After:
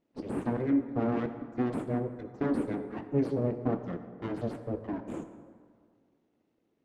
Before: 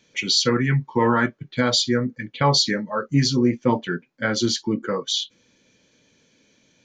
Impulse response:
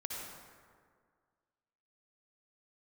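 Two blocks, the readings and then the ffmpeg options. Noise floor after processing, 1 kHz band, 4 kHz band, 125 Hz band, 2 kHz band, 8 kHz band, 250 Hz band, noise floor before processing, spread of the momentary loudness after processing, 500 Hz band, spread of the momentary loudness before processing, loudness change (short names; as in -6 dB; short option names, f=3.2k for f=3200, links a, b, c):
-76 dBFS, -14.5 dB, under -35 dB, -12.0 dB, -20.5 dB, under -30 dB, -7.5 dB, -63 dBFS, 10 LU, -9.0 dB, 7 LU, -11.5 dB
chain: -filter_complex "[0:a]aeval=exprs='abs(val(0))':c=same,bandpass=f=270:t=q:w=2:csg=0,asplit=2[a][b];[1:a]atrim=start_sample=2205[c];[b][c]afir=irnorm=-1:irlink=0,volume=-7dB[d];[a][d]amix=inputs=2:normalize=0"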